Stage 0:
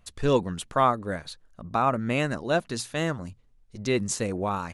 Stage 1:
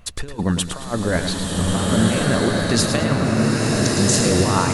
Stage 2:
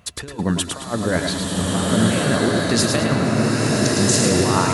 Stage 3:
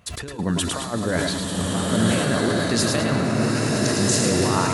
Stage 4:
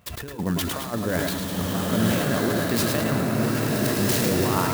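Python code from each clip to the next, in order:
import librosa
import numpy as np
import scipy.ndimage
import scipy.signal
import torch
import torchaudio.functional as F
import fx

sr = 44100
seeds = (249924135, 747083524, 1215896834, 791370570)

y1 = fx.over_compress(x, sr, threshold_db=-30.0, ratio=-0.5)
y1 = fx.echo_feedback(y1, sr, ms=109, feedback_pct=32, wet_db=-9.0)
y1 = fx.rev_bloom(y1, sr, seeds[0], attack_ms=1510, drr_db=-3.5)
y1 = F.gain(torch.from_numpy(y1), 8.5).numpy()
y2 = scipy.signal.sosfilt(scipy.signal.butter(2, 90.0, 'highpass', fs=sr, output='sos'), y1)
y2 = y2 + 10.0 ** (-7.5 / 20.0) * np.pad(y2, (int(106 * sr / 1000.0), 0))[:len(y2)]
y3 = fx.sustainer(y2, sr, db_per_s=27.0)
y3 = F.gain(torch.from_numpy(y3), -3.5).numpy()
y4 = fx.clock_jitter(y3, sr, seeds[1], jitter_ms=0.04)
y4 = F.gain(torch.from_numpy(y4), -2.0).numpy()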